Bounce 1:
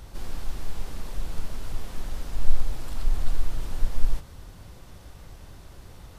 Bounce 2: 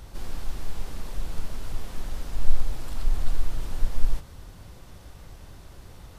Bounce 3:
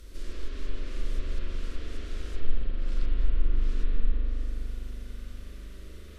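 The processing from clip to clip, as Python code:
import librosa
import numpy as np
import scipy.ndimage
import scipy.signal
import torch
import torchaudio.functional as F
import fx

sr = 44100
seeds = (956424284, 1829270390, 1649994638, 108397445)

y1 = x
y2 = fx.env_lowpass_down(y1, sr, base_hz=730.0, full_db=-11.0)
y2 = fx.fixed_phaser(y2, sr, hz=340.0, stages=4)
y2 = fx.rev_spring(y2, sr, rt60_s=4.0, pass_ms=(41,), chirp_ms=50, drr_db=-5.0)
y2 = y2 * 10.0 ** (-3.0 / 20.0)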